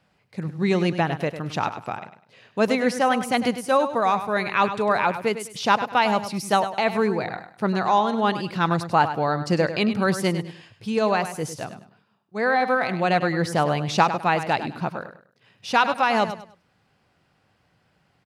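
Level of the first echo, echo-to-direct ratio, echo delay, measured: −11.0 dB, −10.5 dB, 101 ms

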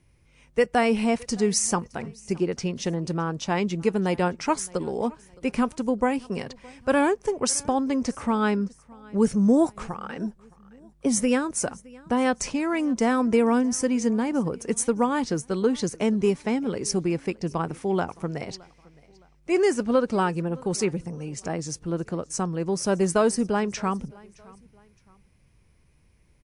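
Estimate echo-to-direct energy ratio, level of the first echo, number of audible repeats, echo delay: −23.5 dB, −24.0 dB, 2, 616 ms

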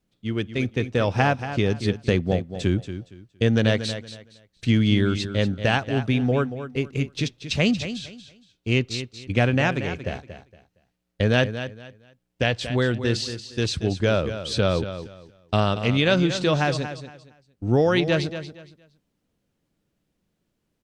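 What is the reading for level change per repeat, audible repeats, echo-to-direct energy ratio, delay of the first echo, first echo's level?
−12.0 dB, 2, −10.5 dB, 232 ms, −11.0 dB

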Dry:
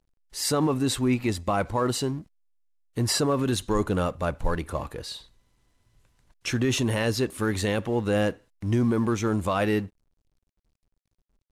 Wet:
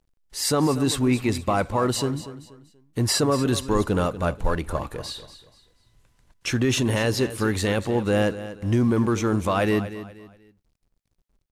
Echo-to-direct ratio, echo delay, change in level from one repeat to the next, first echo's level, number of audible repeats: −13.0 dB, 240 ms, −10.0 dB, −13.5 dB, 3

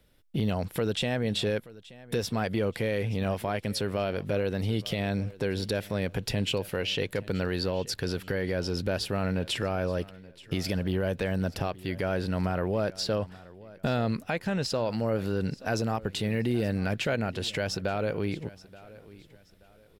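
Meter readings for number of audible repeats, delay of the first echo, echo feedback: 2, 878 ms, 32%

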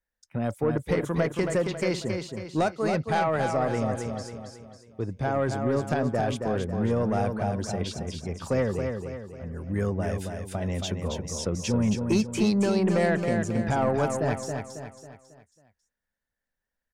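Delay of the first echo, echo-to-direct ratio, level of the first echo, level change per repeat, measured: 273 ms, −4.5 dB, −5.5 dB, −7.0 dB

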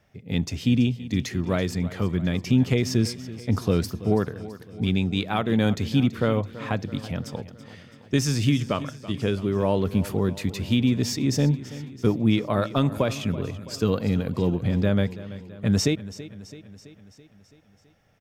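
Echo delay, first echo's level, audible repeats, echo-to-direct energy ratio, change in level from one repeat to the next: 331 ms, −16.0 dB, 5, −14.0 dB, −4.5 dB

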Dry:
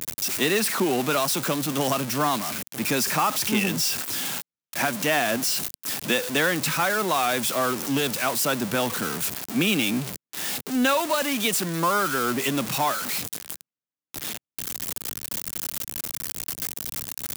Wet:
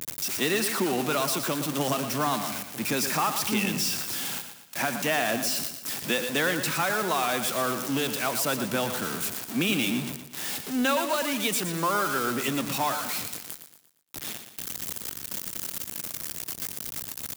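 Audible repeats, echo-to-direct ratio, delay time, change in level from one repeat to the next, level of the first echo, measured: 4, −8.0 dB, 117 ms, −7.5 dB, −9.0 dB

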